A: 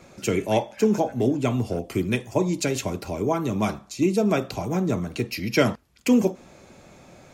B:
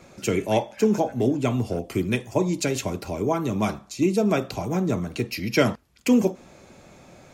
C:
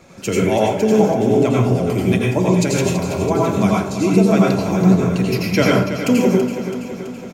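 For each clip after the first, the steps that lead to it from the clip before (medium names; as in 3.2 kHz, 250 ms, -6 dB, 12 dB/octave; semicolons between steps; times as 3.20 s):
no audible change
feedback delay 330 ms, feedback 60%, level -10 dB; plate-style reverb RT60 0.56 s, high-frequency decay 0.6×, pre-delay 75 ms, DRR -3 dB; trim +2 dB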